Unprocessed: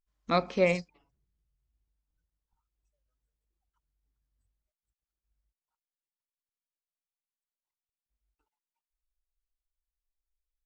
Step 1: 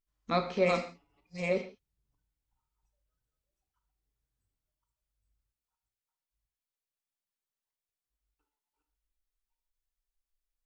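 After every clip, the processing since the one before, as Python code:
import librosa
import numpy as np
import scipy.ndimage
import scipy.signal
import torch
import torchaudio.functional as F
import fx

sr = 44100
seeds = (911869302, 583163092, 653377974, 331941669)

y = fx.reverse_delay(x, sr, ms=538, wet_db=-3.0)
y = fx.rev_gated(y, sr, seeds[0], gate_ms=190, shape='falling', drr_db=5.5)
y = F.gain(torch.from_numpy(y), -3.5).numpy()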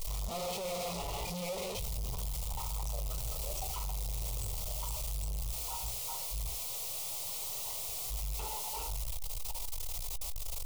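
y = np.sign(x) * np.sqrt(np.mean(np.square(x)))
y = fx.fixed_phaser(y, sr, hz=670.0, stages=4)
y = fx.doubler(y, sr, ms=17.0, db=-13.5)
y = F.gain(torch.from_numpy(y), 5.5).numpy()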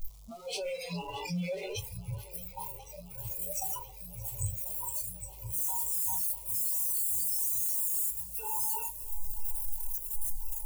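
y = fx.noise_reduce_blind(x, sr, reduce_db=27)
y = fx.bass_treble(y, sr, bass_db=6, treble_db=6)
y = fx.echo_swing(y, sr, ms=1043, ratio=1.5, feedback_pct=77, wet_db=-19.5)
y = F.gain(torch.from_numpy(y), 4.5).numpy()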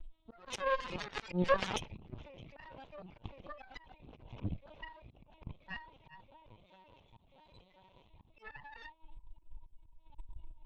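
y = fx.lpc_vocoder(x, sr, seeds[1], excitation='pitch_kept', order=16)
y = fx.cheby_harmonics(y, sr, harmonics=(4, 7), levels_db=(-8, -15), full_scale_db=-23.5)
y = fx.auto_swell(y, sr, attack_ms=150.0)
y = F.gain(torch.from_numpy(y), 7.0).numpy()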